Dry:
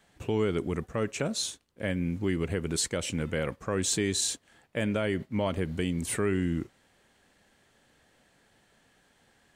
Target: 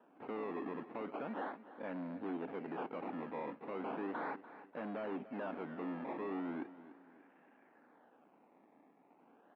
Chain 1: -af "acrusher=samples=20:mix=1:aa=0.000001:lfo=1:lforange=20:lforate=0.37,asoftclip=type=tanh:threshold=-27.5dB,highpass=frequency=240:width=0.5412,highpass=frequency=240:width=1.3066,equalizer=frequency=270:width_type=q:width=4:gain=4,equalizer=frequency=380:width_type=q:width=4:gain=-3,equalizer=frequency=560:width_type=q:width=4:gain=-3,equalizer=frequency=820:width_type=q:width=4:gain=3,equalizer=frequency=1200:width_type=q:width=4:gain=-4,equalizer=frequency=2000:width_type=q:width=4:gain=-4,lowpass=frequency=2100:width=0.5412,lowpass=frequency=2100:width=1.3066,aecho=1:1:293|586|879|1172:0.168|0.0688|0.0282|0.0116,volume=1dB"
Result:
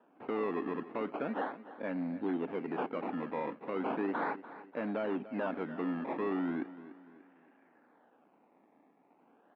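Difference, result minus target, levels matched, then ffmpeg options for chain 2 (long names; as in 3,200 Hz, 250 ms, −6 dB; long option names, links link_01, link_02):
soft clipping: distortion −6 dB
-af "acrusher=samples=20:mix=1:aa=0.000001:lfo=1:lforange=20:lforate=0.37,asoftclip=type=tanh:threshold=-37.5dB,highpass=frequency=240:width=0.5412,highpass=frequency=240:width=1.3066,equalizer=frequency=270:width_type=q:width=4:gain=4,equalizer=frequency=380:width_type=q:width=4:gain=-3,equalizer=frequency=560:width_type=q:width=4:gain=-3,equalizer=frequency=820:width_type=q:width=4:gain=3,equalizer=frequency=1200:width_type=q:width=4:gain=-4,equalizer=frequency=2000:width_type=q:width=4:gain=-4,lowpass=frequency=2100:width=0.5412,lowpass=frequency=2100:width=1.3066,aecho=1:1:293|586|879|1172:0.168|0.0688|0.0282|0.0116,volume=1dB"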